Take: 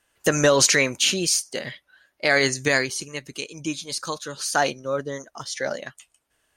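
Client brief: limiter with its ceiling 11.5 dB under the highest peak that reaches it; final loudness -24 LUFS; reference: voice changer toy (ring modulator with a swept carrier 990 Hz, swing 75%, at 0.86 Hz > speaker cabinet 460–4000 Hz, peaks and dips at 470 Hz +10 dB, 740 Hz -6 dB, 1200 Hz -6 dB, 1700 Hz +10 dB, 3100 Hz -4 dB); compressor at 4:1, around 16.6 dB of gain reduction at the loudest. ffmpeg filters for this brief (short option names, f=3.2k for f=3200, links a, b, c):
-af "acompressor=threshold=-34dB:ratio=4,alimiter=level_in=4.5dB:limit=-24dB:level=0:latency=1,volume=-4.5dB,aeval=exprs='val(0)*sin(2*PI*990*n/s+990*0.75/0.86*sin(2*PI*0.86*n/s))':c=same,highpass=460,equalizer=f=470:t=q:w=4:g=10,equalizer=f=740:t=q:w=4:g=-6,equalizer=f=1.2k:t=q:w=4:g=-6,equalizer=f=1.7k:t=q:w=4:g=10,equalizer=f=3.1k:t=q:w=4:g=-4,lowpass=f=4k:w=0.5412,lowpass=f=4k:w=1.3066,volume=18dB"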